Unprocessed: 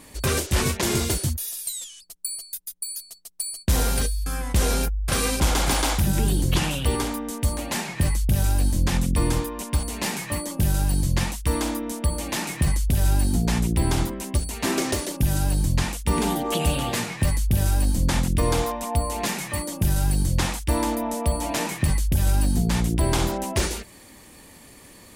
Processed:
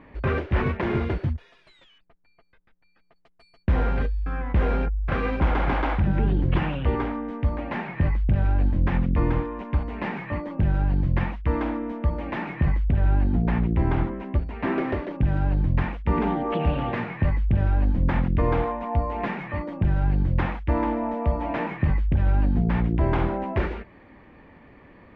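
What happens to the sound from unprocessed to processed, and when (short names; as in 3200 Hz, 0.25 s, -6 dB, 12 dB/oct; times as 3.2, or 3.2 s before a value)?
1.98–3.16 LPF 2200 Hz
12.83–15.11 air absorption 58 m
whole clip: LPF 2200 Hz 24 dB/oct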